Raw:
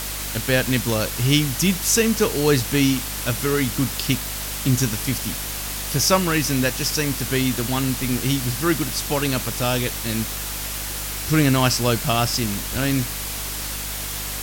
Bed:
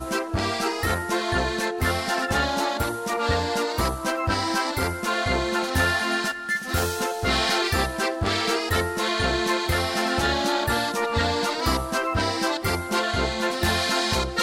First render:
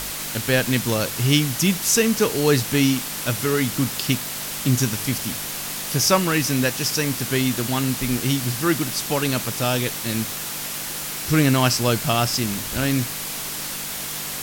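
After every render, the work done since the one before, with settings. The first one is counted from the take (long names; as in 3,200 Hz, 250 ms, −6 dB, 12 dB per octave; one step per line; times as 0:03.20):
hum removal 50 Hz, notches 2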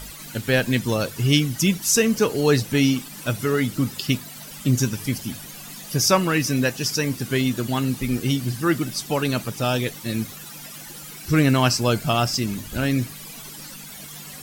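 broadband denoise 14 dB, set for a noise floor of −30 dBFS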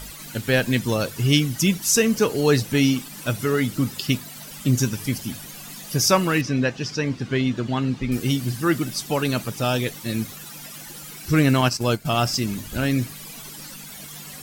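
0:06.41–0:08.12: high-frequency loss of the air 140 metres
0:11.61–0:12.17: transient designer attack −4 dB, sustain −12 dB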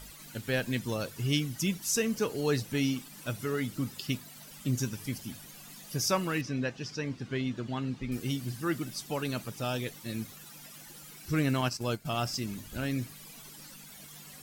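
level −10.5 dB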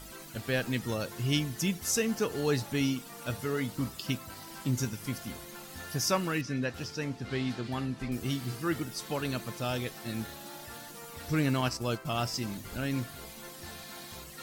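mix in bed −23.5 dB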